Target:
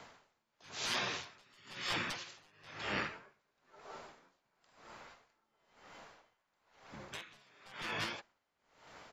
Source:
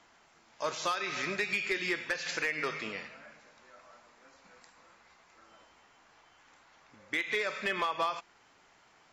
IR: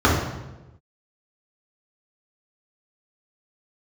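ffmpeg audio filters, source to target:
-filter_complex "[0:a]bandreject=f=500:w=16,afftfilt=real='re*lt(hypot(re,im),0.0316)':imag='im*lt(hypot(re,im),0.0316)':win_size=1024:overlap=0.75,asplit=3[a][b][c];[b]asetrate=29433,aresample=44100,atempo=1.49831,volume=0dB[d];[c]asetrate=35002,aresample=44100,atempo=1.25992,volume=-15dB[e];[a][d][e]amix=inputs=3:normalize=0,aeval=exprs='val(0)*pow(10,-30*(0.5-0.5*cos(2*PI*1*n/s))/20)':c=same,volume=5.5dB"

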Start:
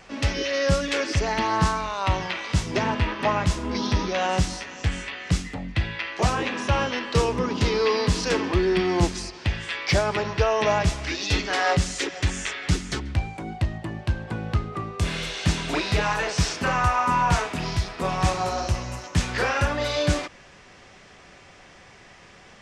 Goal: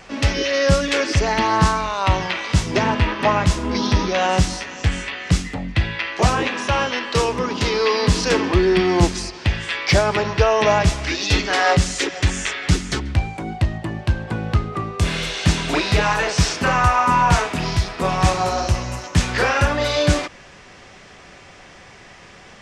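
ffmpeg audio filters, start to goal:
-filter_complex "[0:a]asettb=1/sr,asplit=3[a][b][c];[a]atrim=end=6.474[d];[b]atrim=start=6.47:end=8.03,asetpts=PTS-STARTPTS,afade=t=in:d=0.004:c=qsin,afade=t=out:st=1.556:d=0.004:c=qsin,lowshelf=f=370:g=-6.5[e];[c]atrim=start=8.026[f];[d][e]acrossfade=d=0.004:c1=hsin:c2=qsin[g];[g][f]acrossfade=d=0.004:c1=qsin:c2=hsin,volume=5.5dB"

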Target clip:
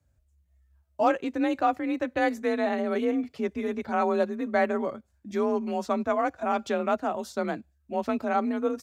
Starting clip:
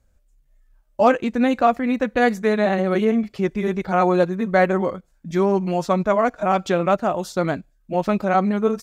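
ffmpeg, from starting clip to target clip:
-af "afreqshift=37,volume=-7.5dB"

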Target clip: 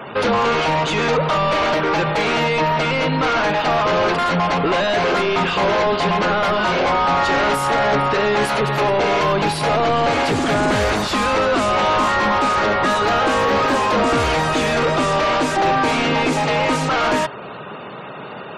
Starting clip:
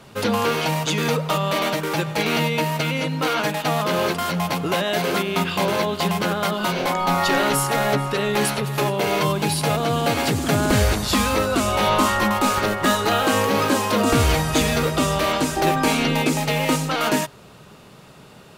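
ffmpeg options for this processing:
-filter_complex "[0:a]asplit=2[a][b];[b]highpass=f=720:p=1,volume=29dB,asoftclip=type=tanh:threshold=-6dB[c];[a][c]amix=inputs=2:normalize=0,lowpass=f=1.4k:p=1,volume=-6dB,afftfilt=real='re*gte(hypot(re,im),0.02)':imag='im*gte(hypot(re,im),0.02)':win_size=1024:overlap=0.75,volume=-2.5dB"

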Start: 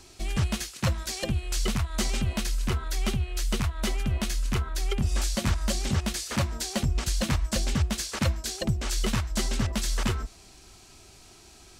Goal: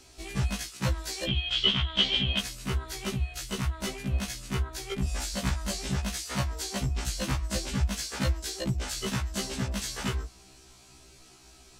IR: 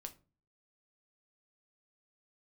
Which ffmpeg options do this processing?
-filter_complex "[0:a]asettb=1/sr,asplit=3[a][b][c];[a]atrim=end=1.274[d];[b]atrim=start=1.27:end=2.39,asetpts=PTS-STARTPTS,afade=t=in:d=0.004:c=qsin,afade=t=out:st=1.116:d=0.004:c=qsin,lowpass=f=3.2k:t=q:w=16[e];[c]atrim=start=2.386[f];[d][e]acrossfade=d=0.004:c1=hsin:c2=qsin[g];[g][f]acrossfade=d=0.004:c1=qsin:c2=hsin,afftfilt=real='re*1.73*eq(mod(b,3),0)':imag='im*1.73*eq(mod(b,3),0)':win_size=2048:overlap=0.75"

